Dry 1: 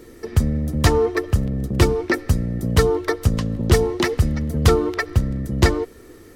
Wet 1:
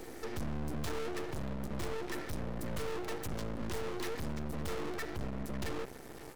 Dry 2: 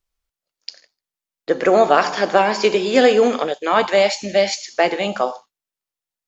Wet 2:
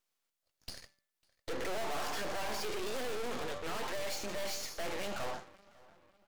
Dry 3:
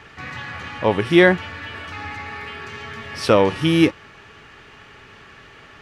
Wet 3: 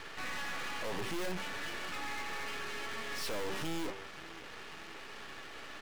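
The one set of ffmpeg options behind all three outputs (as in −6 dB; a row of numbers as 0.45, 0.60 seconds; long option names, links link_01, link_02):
-filter_complex "[0:a]bandreject=frequency=194.2:width_type=h:width=4,bandreject=frequency=388.4:width_type=h:width=4,bandreject=frequency=582.6:width_type=h:width=4,bandreject=frequency=776.8:width_type=h:width=4,bandreject=frequency=971:width_type=h:width=4,bandreject=frequency=1165.2:width_type=h:width=4,bandreject=frequency=1359.4:width_type=h:width=4,bandreject=frequency=1553.6:width_type=h:width=4,bandreject=frequency=1747.8:width_type=h:width=4,bandreject=frequency=1942:width_type=h:width=4,bandreject=frequency=2136.2:width_type=h:width=4,acrossover=split=190|820[link_01][link_02][link_03];[link_01]aeval=exprs='sgn(val(0))*max(abs(val(0))-0.0237,0)':channel_layout=same[link_04];[link_04][link_02][link_03]amix=inputs=3:normalize=0,aeval=exprs='(tanh(35.5*val(0)+0.65)-tanh(0.65))/35.5':channel_layout=same,asplit=2[link_05][link_06];[link_06]adelay=550,lowpass=frequency=2400:poles=1,volume=-21dB,asplit=2[link_07][link_08];[link_08]adelay=550,lowpass=frequency=2400:poles=1,volume=0.47,asplit=2[link_09][link_10];[link_10]adelay=550,lowpass=frequency=2400:poles=1,volume=0.47[link_11];[link_07][link_09][link_11]amix=inputs=3:normalize=0[link_12];[link_05][link_12]amix=inputs=2:normalize=0,aeval=exprs='max(val(0),0)':channel_layout=same,volume=7.5dB"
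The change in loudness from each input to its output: −19.5, −21.5, −21.0 LU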